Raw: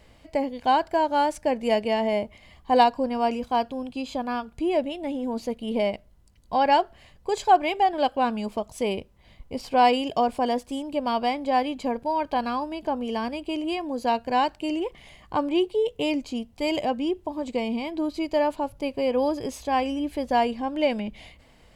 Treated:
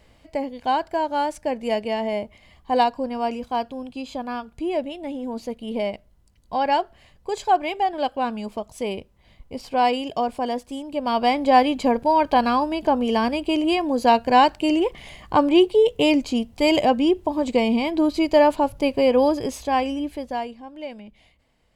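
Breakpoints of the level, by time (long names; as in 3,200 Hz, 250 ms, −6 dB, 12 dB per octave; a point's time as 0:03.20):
0:10.88 −1 dB
0:11.40 +7.5 dB
0:18.93 +7.5 dB
0:20.03 +1 dB
0:20.62 −11 dB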